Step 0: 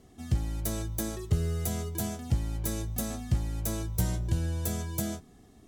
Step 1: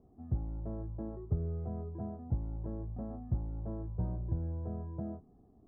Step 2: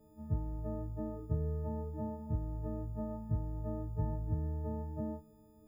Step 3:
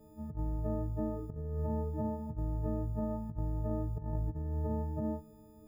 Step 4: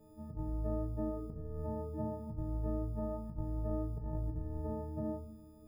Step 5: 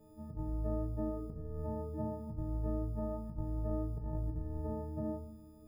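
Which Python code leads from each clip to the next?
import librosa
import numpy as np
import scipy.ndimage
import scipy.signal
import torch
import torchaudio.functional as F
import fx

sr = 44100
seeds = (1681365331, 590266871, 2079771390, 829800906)

y1 = scipy.signal.sosfilt(scipy.signal.cheby2(4, 60, 3200.0, 'lowpass', fs=sr, output='sos'), x)
y1 = y1 * 10.0 ** (-6.0 / 20.0)
y2 = fx.freq_snap(y1, sr, grid_st=6)
y2 = y2 * 10.0 ** (1.0 / 20.0)
y3 = fx.over_compress(y2, sr, threshold_db=-37.0, ratio=-0.5)
y3 = y3 * 10.0 ** (3.5 / 20.0)
y4 = fx.room_shoebox(y3, sr, seeds[0], volume_m3=100.0, walls='mixed', distance_m=0.51)
y4 = y4 * 10.0 ** (-3.5 / 20.0)
y5 = y4 + 10.0 ** (-22.5 / 20.0) * np.pad(y4, (int(128 * sr / 1000.0), 0))[:len(y4)]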